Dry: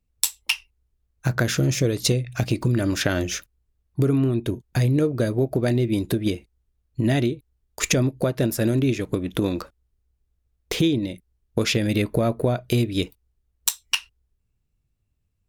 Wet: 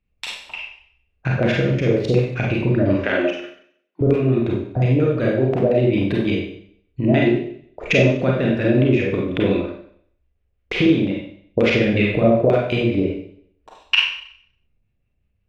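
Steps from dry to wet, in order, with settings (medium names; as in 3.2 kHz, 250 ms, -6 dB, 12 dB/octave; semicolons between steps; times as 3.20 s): 3.02–4.01 s: steep high-pass 220 Hz 48 dB/octave; LFO low-pass square 5.6 Hz 600–2500 Hz; Schroeder reverb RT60 0.61 s, combs from 31 ms, DRR -3 dB; trim -1 dB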